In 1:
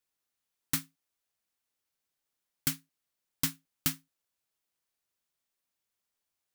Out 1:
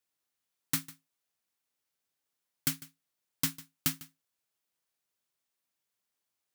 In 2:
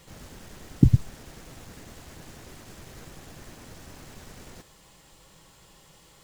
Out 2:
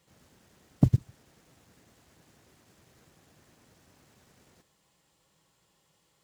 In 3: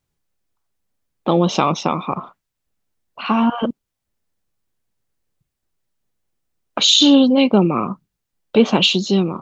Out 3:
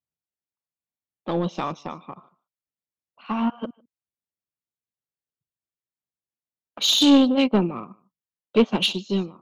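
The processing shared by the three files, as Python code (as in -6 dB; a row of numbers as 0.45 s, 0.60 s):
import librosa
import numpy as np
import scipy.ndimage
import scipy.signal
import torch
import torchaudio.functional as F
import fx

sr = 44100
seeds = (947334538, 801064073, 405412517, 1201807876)

y = scipy.signal.sosfilt(scipy.signal.butter(2, 80.0, 'highpass', fs=sr, output='sos'), x)
y = y + 10.0 ** (-19.5 / 20.0) * np.pad(y, (int(150 * sr / 1000.0), 0))[:len(y)]
y = 10.0 ** (-8.0 / 20.0) * np.tanh(y / 10.0 ** (-8.0 / 20.0))
y = fx.upward_expand(y, sr, threshold_db=-25.0, expansion=2.5)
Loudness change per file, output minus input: 0.0 LU, -4.5 LU, -5.5 LU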